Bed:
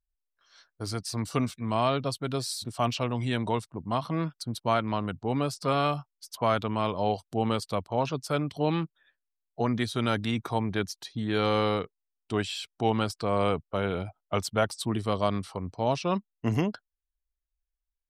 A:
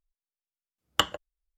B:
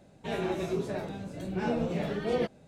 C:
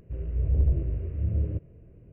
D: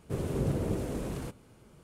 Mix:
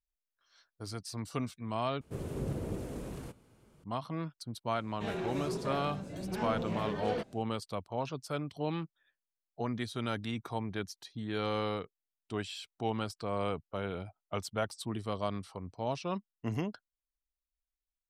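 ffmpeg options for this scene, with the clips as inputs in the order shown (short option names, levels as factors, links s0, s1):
-filter_complex "[0:a]volume=0.398[s0];[2:a]asoftclip=type=tanh:threshold=0.0355[s1];[s0]asplit=2[s2][s3];[s2]atrim=end=2.014[s4];[4:a]atrim=end=1.83,asetpts=PTS-STARTPTS,volume=0.501[s5];[s3]atrim=start=3.836[s6];[s1]atrim=end=2.67,asetpts=PTS-STARTPTS,volume=0.794,afade=t=in:d=0.004:c=hsin,afade=t=out:st=2.666:d=0.004:c=hsin,adelay=4760[s7];[s4][s5]acrossfade=d=0.004:c1=hsin:c2=hsin[s8];[s8][s6]acrossfade=d=0.004:c1=hsin:c2=hsin[s9];[s9][s7]amix=inputs=2:normalize=0"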